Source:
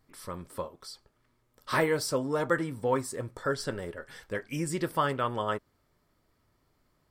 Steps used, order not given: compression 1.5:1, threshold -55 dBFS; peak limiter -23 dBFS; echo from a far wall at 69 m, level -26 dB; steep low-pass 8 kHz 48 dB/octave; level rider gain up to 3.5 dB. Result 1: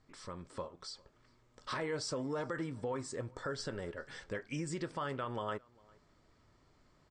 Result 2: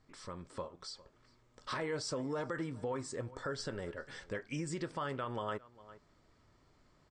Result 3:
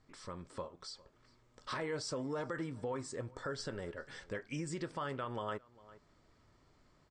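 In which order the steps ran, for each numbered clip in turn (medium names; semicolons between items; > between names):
steep low-pass > peak limiter > compression > echo from a far wall > level rider; echo from a far wall > peak limiter > steep low-pass > compression > level rider; peak limiter > level rider > echo from a far wall > compression > steep low-pass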